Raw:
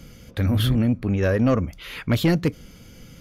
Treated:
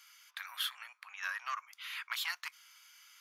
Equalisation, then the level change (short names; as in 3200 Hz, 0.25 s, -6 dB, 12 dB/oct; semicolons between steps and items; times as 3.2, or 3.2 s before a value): steep high-pass 980 Hz 48 dB/oct; -6.0 dB